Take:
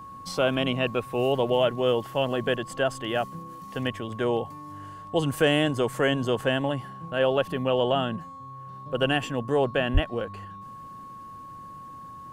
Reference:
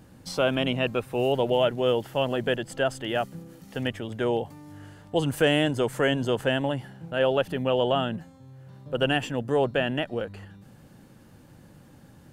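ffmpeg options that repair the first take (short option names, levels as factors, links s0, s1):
-filter_complex "[0:a]bandreject=f=1100:w=30,asplit=3[s0][s1][s2];[s0]afade=t=out:st=9.93:d=0.02[s3];[s1]highpass=f=140:w=0.5412,highpass=f=140:w=1.3066,afade=t=in:st=9.93:d=0.02,afade=t=out:st=10.05:d=0.02[s4];[s2]afade=t=in:st=10.05:d=0.02[s5];[s3][s4][s5]amix=inputs=3:normalize=0"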